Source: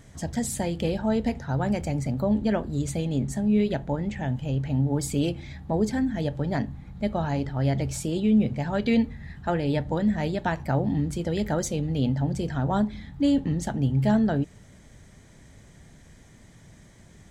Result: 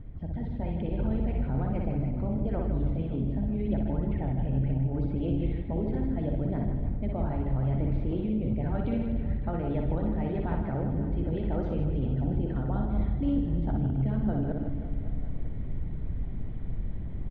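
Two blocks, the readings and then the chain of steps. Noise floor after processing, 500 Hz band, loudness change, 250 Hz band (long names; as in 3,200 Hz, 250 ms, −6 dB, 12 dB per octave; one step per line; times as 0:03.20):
−34 dBFS, −6.0 dB, −4.5 dB, −5.0 dB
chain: delay that plays each chunk backwards 103 ms, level −9 dB
Butterworth low-pass 3,600 Hz 36 dB per octave
notch filter 1,700 Hz, Q 12
harmonic and percussive parts rebalanced harmonic −12 dB
spectral tilt −4.5 dB per octave
reversed playback
downward compressor, threshold −29 dBFS, peak gain reduction 14 dB
reversed playback
brickwall limiter −26.5 dBFS, peak gain reduction 7.5 dB
automatic gain control gain up to 5 dB
reverse bouncing-ball delay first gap 60 ms, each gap 1.6×, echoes 5
spring reverb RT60 2.3 s, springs 53/57 ms, chirp 80 ms, DRR 10 dB
level −1.5 dB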